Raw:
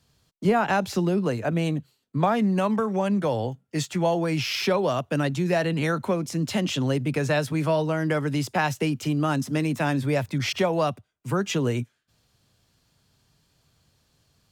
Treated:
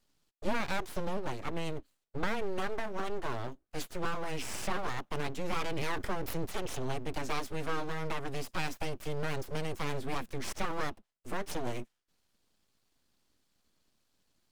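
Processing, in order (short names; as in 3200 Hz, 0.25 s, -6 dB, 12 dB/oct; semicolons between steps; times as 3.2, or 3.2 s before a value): full-wave rectifier; 5.44–6.47 fast leveller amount 50%; gain -8 dB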